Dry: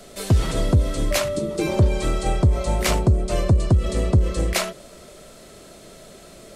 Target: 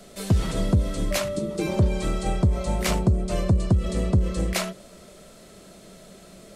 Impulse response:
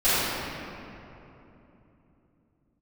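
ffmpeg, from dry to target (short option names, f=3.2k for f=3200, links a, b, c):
-af "equalizer=f=190:t=o:w=0.23:g=9.5,volume=-4dB"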